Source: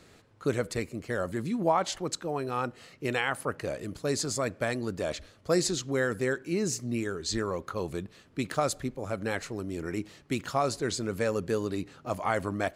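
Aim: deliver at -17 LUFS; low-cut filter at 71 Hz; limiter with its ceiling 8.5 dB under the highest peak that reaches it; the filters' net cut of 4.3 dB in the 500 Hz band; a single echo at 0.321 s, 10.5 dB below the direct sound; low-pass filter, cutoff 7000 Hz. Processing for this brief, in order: HPF 71 Hz; LPF 7000 Hz; bell 500 Hz -5.5 dB; limiter -22 dBFS; echo 0.321 s -10.5 dB; gain +18 dB

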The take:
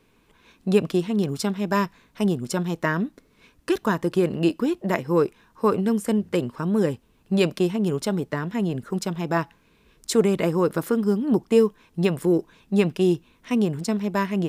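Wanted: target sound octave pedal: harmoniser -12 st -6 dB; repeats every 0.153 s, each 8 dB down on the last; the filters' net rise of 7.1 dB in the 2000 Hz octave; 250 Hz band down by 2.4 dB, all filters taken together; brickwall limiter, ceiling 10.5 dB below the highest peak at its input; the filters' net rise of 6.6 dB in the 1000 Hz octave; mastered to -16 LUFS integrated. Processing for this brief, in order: bell 250 Hz -4 dB; bell 1000 Hz +6 dB; bell 2000 Hz +7 dB; limiter -13 dBFS; feedback echo 0.153 s, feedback 40%, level -8 dB; harmoniser -12 st -6 dB; gain +8.5 dB

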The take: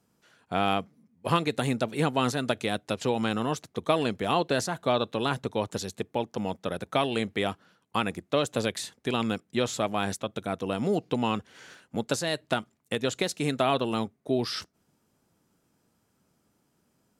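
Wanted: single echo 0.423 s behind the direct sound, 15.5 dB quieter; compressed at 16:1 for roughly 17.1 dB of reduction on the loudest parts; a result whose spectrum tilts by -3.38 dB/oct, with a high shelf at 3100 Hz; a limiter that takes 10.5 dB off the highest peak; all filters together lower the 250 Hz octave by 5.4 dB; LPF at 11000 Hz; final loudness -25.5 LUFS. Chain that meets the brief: LPF 11000 Hz; bell 250 Hz -7 dB; high shelf 3100 Hz +5 dB; compressor 16:1, threshold -37 dBFS; limiter -30 dBFS; echo 0.423 s -15.5 dB; gain +19 dB

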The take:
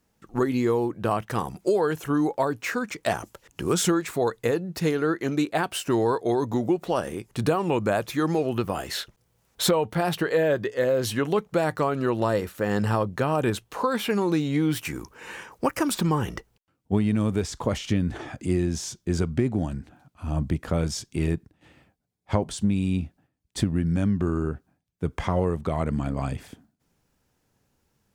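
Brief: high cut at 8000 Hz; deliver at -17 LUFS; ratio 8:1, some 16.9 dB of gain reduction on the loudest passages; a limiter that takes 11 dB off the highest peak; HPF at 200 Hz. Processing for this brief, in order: HPF 200 Hz; LPF 8000 Hz; compressor 8:1, threshold -37 dBFS; gain +26 dB; limiter -6 dBFS

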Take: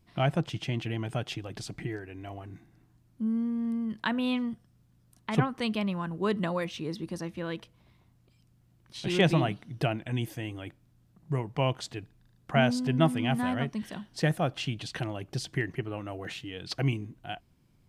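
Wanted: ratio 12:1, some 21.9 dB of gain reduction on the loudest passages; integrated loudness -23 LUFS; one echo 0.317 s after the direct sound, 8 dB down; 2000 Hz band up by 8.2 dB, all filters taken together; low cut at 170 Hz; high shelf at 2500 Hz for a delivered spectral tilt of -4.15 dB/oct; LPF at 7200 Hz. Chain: HPF 170 Hz; LPF 7200 Hz; bell 2000 Hz +7.5 dB; high shelf 2500 Hz +6 dB; compressor 12:1, threshold -38 dBFS; echo 0.317 s -8 dB; gain +19 dB

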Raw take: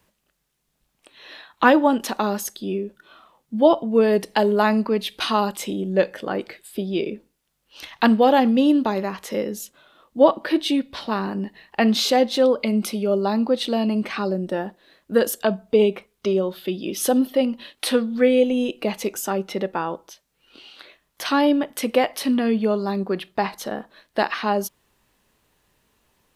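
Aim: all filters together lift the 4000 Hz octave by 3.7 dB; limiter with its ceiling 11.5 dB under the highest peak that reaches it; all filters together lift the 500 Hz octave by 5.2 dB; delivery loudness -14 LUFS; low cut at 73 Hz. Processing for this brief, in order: HPF 73 Hz; bell 500 Hz +6 dB; bell 4000 Hz +4.5 dB; gain +7.5 dB; limiter -3 dBFS

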